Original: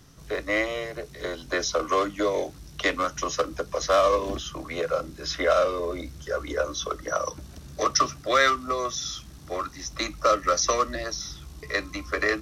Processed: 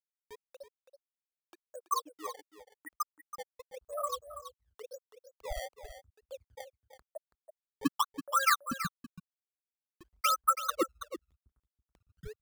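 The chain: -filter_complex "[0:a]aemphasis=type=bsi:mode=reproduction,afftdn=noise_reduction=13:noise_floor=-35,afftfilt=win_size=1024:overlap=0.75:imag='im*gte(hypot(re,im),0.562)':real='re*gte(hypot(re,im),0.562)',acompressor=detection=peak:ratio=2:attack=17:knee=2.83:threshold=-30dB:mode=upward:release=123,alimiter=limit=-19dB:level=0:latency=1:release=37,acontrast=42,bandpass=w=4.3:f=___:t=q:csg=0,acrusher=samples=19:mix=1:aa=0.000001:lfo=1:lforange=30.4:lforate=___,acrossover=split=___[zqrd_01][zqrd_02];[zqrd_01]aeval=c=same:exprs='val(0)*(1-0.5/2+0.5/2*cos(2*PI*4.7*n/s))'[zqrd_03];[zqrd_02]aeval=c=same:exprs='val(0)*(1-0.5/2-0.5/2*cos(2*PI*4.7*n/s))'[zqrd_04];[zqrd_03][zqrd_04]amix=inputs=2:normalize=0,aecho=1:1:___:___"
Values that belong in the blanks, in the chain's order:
1.3k, 0.93, 900, 329, 0.282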